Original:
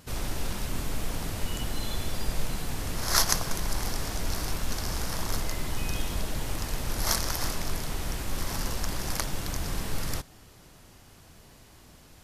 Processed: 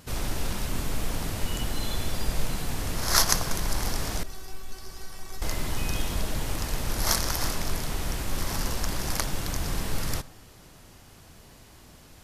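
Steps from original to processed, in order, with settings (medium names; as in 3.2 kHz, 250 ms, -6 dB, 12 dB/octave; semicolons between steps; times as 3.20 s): 4.23–5.42 s: feedback comb 380 Hz, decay 0.22 s, harmonics all, mix 90%; on a send: reverberation RT60 0.60 s, pre-delay 52 ms, DRR 20 dB; on the sum: trim +2 dB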